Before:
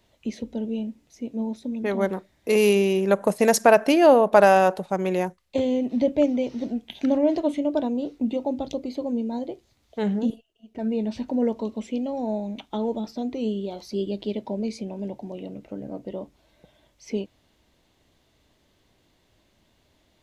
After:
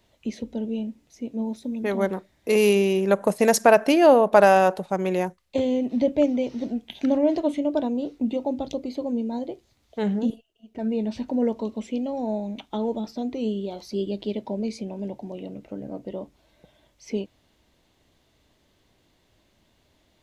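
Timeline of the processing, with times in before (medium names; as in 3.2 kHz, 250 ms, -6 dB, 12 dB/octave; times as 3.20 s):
1.46–2.03 s: treble shelf 10 kHz +8.5 dB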